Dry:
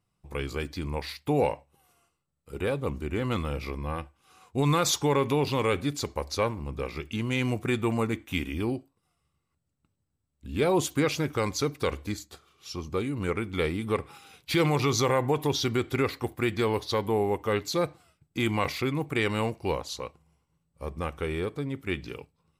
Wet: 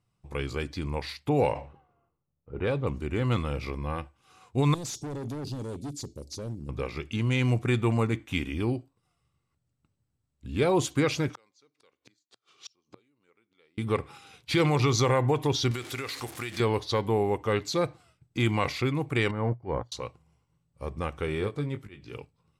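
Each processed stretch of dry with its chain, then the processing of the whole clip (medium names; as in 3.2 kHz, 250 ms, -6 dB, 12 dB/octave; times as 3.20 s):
1.29–2.87 s: level-controlled noise filter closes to 850 Hz, open at -20.5 dBFS + decay stretcher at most 110 dB/s
4.74–6.69 s: Chebyshev band-stop 290–6000 Hz + bass shelf 100 Hz -9.5 dB + hard clipper -33.5 dBFS
11.29–13.78 s: treble shelf 3.5 kHz +11.5 dB + inverted gate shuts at -26 dBFS, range -37 dB + band-pass 260–5900 Hz
15.71–16.60 s: jump at every zero crossing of -39 dBFS + tilt EQ +3 dB/octave + compression 10:1, threshold -30 dBFS
19.31–19.92 s: transient shaper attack -5 dB, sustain +9 dB + Savitzky-Golay filter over 41 samples + upward expansion 2.5:1, over -42 dBFS
21.26–22.13 s: slow attack 477 ms + doubling 20 ms -7.5 dB
whole clip: low-pass 9.2 kHz 12 dB/octave; peaking EQ 120 Hz +8 dB 0.23 oct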